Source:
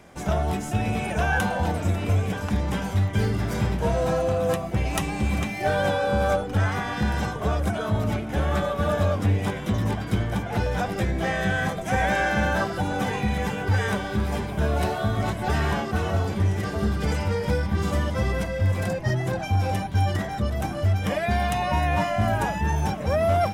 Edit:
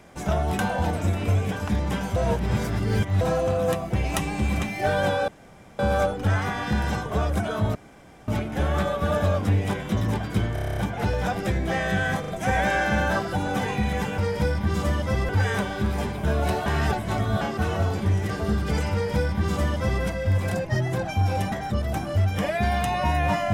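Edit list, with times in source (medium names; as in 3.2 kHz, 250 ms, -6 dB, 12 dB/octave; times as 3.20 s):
0.59–1.40 s: delete
2.97–4.02 s: reverse
6.09 s: insert room tone 0.51 s
8.05 s: insert room tone 0.53 s
10.30 s: stutter 0.03 s, 9 plays
11.73 s: stutter 0.04 s, 3 plays
15.00–15.75 s: reverse
17.26–18.37 s: copy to 13.63 s
19.86–20.20 s: delete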